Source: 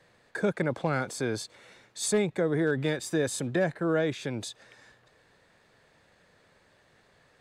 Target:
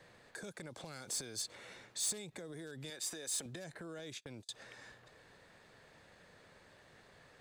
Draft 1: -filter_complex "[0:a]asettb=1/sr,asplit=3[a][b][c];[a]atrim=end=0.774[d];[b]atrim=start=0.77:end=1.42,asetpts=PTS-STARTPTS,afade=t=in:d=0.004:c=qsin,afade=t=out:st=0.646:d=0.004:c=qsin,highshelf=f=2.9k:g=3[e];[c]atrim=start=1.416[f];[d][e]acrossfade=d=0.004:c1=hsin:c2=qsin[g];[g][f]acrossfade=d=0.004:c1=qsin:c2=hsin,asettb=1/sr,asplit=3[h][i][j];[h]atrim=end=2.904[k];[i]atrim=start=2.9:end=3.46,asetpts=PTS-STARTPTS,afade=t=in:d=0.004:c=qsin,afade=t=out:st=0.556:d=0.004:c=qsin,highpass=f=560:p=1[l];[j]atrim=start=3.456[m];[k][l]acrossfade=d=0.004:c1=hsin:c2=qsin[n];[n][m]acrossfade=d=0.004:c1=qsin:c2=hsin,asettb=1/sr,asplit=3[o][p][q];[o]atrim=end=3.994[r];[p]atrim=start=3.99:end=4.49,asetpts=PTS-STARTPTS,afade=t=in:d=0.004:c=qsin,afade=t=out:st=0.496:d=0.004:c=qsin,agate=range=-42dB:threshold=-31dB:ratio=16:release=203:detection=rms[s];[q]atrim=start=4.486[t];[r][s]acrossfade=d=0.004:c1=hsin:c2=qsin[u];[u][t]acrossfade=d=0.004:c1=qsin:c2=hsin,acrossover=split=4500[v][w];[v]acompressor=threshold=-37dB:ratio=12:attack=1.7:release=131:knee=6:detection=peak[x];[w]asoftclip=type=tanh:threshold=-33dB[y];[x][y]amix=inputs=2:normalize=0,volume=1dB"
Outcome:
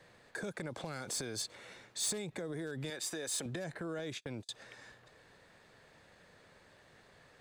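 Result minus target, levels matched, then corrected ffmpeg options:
compressor: peak gain reduction -7.5 dB
-filter_complex "[0:a]asettb=1/sr,asplit=3[a][b][c];[a]atrim=end=0.774[d];[b]atrim=start=0.77:end=1.42,asetpts=PTS-STARTPTS,afade=t=in:d=0.004:c=qsin,afade=t=out:st=0.646:d=0.004:c=qsin,highshelf=f=2.9k:g=3[e];[c]atrim=start=1.416[f];[d][e]acrossfade=d=0.004:c1=hsin:c2=qsin[g];[g][f]acrossfade=d=0.004:c1=qsin:c2=hsin,asettb=1/sr,asplit=3[h][i][j];[h]atrim=end=2.904[k];[i]atrim=start=2.9:end=3.46,asetpts=PTS-STARTPTS,afade=t=in:d=0.004:c=qsin,afade=t=out:st=0.556:d=0.004:c=qsin,highpass=f=560:p=1[l];[j]atrim=start=3.456[m];[k][l]acrossfade=d=0.004:c1=hsin:c2=qsin[n];[n][m]acrossfade=d=0.004:c1=qsin:c2=hsin,asettb=1/sr,asplit=3[o][p][q];[o]atrim=end=3.994[r];[p]atrim=start=3.99:end=4.49,asetpts=PTS-STARTPTS,afade=t=in:d=0.004:c=qsin,afade=t=out:st=0.496:d=0.004:c=qsin,agate=range=-42dB:threshold=-31dB:ratio=16:release=203:detection=rms[s];[q]atrim=start=4.486[t];[r][s]acrossfade=d=0.004:c1=hsin:c2=qsin[u];[u][t]acrossfade=d=0.004:c1=qsin:c2=hsin,acrossover=split=4500[v][w];[v]acompressor=threshold=-45dB:ratio=12:attack=1.7:release=131:knee=6:detection=peak[x];[w]asoftclip=type=tanh:threshold=-33dB[y];[x][y]amix=inputs=2:normalize=0,volume=1dB"

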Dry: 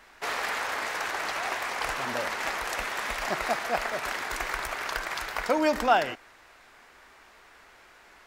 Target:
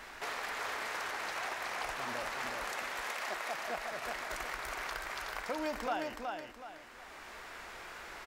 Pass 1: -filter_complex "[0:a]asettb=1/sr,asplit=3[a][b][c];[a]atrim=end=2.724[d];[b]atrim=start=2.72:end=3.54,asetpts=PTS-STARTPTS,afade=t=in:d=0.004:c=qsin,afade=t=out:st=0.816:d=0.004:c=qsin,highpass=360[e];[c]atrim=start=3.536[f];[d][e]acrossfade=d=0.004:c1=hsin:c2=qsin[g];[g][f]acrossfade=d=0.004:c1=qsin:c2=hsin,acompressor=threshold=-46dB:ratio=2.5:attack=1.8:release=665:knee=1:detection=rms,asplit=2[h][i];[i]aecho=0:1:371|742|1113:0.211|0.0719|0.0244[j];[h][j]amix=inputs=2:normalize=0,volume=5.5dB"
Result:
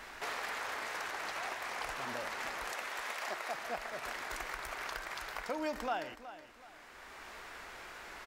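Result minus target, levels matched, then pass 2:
echo-to-direct -9.5 dB
-filter_complex "[0:a]asettb=1/sr,asplit=3[a][b][c];[a]atrim=end=2.724[d];[b]atrim=start=2.72:end=3.54,asetpts=PTS-STARTPTS,afade=t=in:d=0.004:c=qsin,afade=t=out:st=0.816:d=0.004:c=qsin,highpass=360[e];[c]atrim=start=3.536[f];[d][e]acrossfade=d=0.004:c1=hsin:c2=qsin[g];[g][f]acrossfade=d=0.004:c1=qsin:c2=hsin,acompressor=threshold=-46dB:ratio=2.5:attack=1.8:release=665:knee=1:detection=rms,asplit=2[h][i];[i]aecho=0:1:371|742|1113|1484:0.631|0.215|0.0729|0.0248[j];[h][j]amix=inputs=2:normalize=0,volume=5.5dB"

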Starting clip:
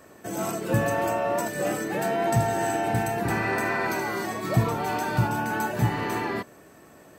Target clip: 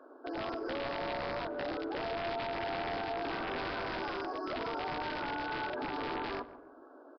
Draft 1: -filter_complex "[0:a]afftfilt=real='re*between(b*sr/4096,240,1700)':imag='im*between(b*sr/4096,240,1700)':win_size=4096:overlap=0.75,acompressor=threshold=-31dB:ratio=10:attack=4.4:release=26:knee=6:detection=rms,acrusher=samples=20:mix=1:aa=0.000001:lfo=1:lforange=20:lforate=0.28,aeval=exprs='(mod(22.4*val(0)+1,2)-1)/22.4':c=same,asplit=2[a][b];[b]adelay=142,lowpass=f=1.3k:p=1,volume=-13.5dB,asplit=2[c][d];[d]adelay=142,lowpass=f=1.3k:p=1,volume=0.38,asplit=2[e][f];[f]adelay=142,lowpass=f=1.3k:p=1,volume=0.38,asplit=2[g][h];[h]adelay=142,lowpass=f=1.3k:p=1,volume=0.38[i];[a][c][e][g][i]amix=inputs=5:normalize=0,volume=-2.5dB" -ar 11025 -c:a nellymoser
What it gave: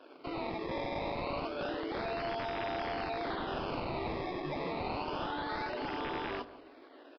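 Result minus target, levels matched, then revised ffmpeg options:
decimation with a swept rate: distortion +15 dB
-filter_complex "[0:a]afftfilt=real='re*between(b*sr/4096,240,1700)':imag='im*between(b*sr/4096,240,1700)':win_size=4096:overlap=0.75,acompressor=threshold=-31dB:ratio=10:attack=4.4:release=26:knee=6:detection=rms,acrusher=samples=5:mix=1:aa=0.000001:lfo=1:lforange=5:lforate=0.28,aeval=exprs='(mod(22.4*val(0)+1,2)-1)/22.4':c=same,asplit=2[a][b];[b]adelay=142,lowpass=f=1.3k:p=1,volume=-13.5dB,asplit=2[c][d];[d]adelay=142,lowpass=f=1.3k:p=1,volume=0.38,asplit=2[e][f];[f]adelay=142,lowpass=f=1.3k:p=1,volume=0.38,asplit=2[g][h];[h]adelay=142,lowpass=f=1.3k:p=1,volume=0.38[i];[a][c][e][g][i]amix=inputs=5:normalize=0,volume=-2.5dB" -ar 11025 -c:a nellymoser

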